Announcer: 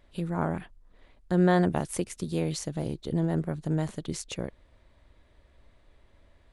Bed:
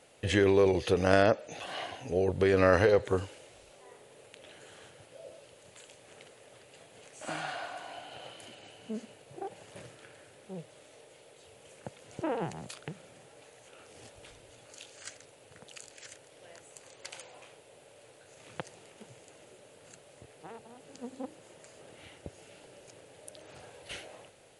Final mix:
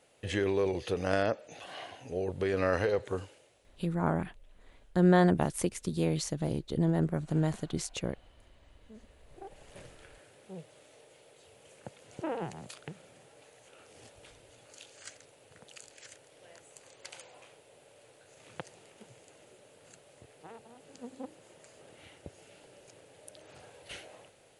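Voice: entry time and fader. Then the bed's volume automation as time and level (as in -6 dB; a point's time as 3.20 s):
3.65 s, -0.5 dB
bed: 3.22 s -5.5 dB
3.98 s -19.5 dB
8.62 s -19.5 dB
9.77 s -2.5 dB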